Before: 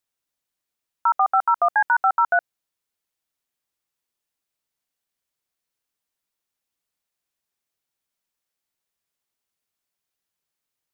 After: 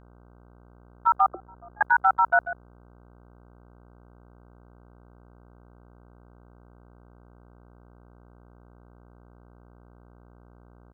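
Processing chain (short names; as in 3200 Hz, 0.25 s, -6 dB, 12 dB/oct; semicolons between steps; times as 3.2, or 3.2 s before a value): gate -20 dBFS, range -14 dB; outdoor echo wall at 24 m, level -12 dB; 1.28–1.81 auto-wah 350–1400 Hz, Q 12, down, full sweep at -24.5 dBFS; buzz 60 Hz, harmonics 26, -52 dBFS -5 dB/oct; gain -1 dB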